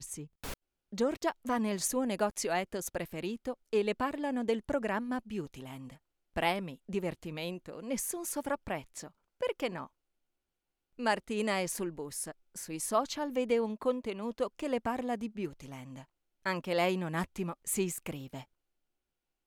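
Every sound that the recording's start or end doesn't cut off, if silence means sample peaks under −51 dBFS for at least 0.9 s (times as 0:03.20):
0:10.99–0:18.44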